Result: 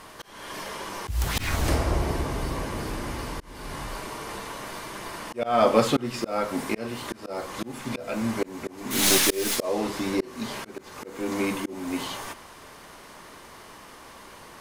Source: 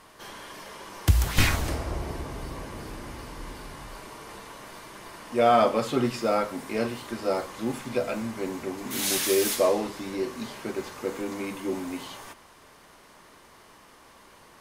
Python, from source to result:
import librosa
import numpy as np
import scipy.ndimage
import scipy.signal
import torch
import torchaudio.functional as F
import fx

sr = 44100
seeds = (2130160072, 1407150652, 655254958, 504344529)

y = fx.tracing_dist(x, sr, depth_ms=0.024)
y = fx.auto_swell(y, sr, attack_ms=354.0)
y = y * librosa.db_to_amplitude(7.0)